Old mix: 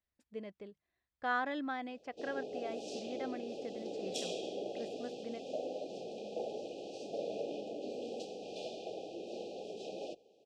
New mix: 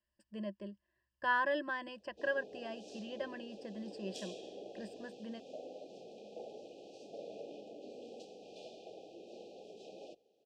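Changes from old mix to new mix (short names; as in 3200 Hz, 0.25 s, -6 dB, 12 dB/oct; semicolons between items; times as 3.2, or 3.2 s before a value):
speech: add ripple EQ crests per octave 1.3, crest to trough 18 dB; background -8.0 dB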